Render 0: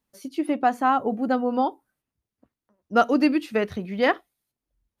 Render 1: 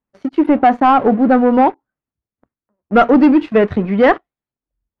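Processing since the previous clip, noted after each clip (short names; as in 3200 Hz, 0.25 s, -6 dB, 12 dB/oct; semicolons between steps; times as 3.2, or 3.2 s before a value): sample leveller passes 3; LPF 1900 Hz 12 dB/oct; gain +3 dB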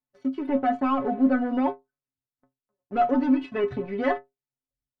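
limiter -8 dBFS, peak gain reduction 5.5 dB; metallic resonator 130 Hz, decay 0.21 s, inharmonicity 0.008; gain -1 dB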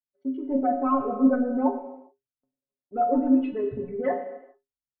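formant sharpening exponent 2; non-linear reverb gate 0.45 s falling, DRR 4.5 dB; three-band expander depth 40%; gain -2 dB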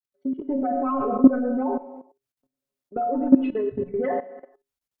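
level quantiser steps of 16 dB; gain +8 dB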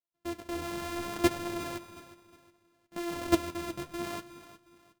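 sample sorter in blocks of 128 samples; flange 0.66 Hz, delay 5.2 ms, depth 9.1 ms, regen +44%; feedback echo 0.362 s, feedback 34%, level -15 dB; gain -8 dB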